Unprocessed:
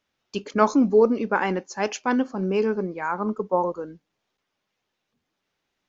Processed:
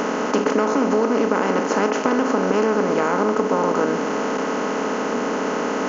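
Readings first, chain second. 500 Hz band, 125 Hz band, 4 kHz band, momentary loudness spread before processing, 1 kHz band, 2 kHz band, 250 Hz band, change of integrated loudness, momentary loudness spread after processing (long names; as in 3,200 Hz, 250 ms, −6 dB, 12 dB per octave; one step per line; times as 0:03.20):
+5.0 dB, +3.0 dB, +7.5 dB, 12 LU, +5.5 dB, +6.0 dB, +4.0 dB, +3.0 dB, 4 LU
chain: compressor on every frequency bin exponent 0.2
downward compressor, threshold −15 dBFS, peak gain reduction 9 dB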